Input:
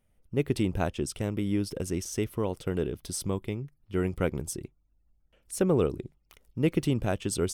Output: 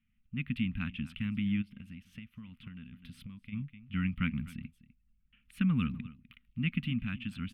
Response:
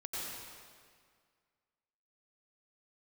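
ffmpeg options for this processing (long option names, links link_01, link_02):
-filter_complex "[0:a]dynaudnorm=framelen=280:gausssize=9:maxgain=4dB,firequalizer=gain_entry='entry(110,0);entry(240,9);entry(350,-30);entry(630,-29);entry(1200,-1);entry(2600,11);entry(5600,-23);entry(8200,-23);entry(12000,-14)':delay=0.05:min_phase=1,aecho=1:1:251:0.119,asplit=3[link_01][link_02][link_03];[link_01]afade=type=out:start_time=1.61:duration=0.02[link_04];[link_02]acompressor=threshold=-36dB:ratio=10,afade=type=in:start_time=1.61:duration=0.02,afade=type=out:start_time=3.52:duration=0.02[link_05];[link_03]afade=type=in:start_time=3.52:duration=0.02[link_06];[link_04][link_05][link_06]amix=inputs=3:normalize=0,volume=-8dB"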